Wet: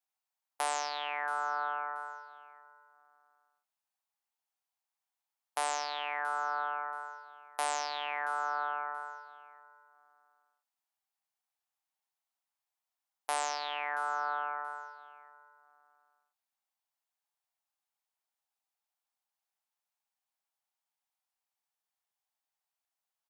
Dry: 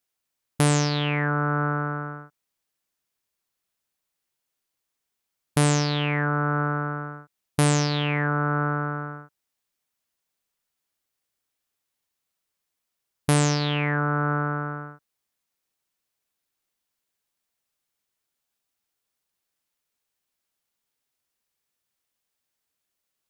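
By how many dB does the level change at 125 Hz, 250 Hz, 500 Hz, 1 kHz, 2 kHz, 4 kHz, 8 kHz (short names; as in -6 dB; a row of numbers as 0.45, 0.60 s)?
under -40 dB, -35.5 dB, -14.0 dB, -4.0 dB, -8.5 dB, -10.0 dB, -10.5 dB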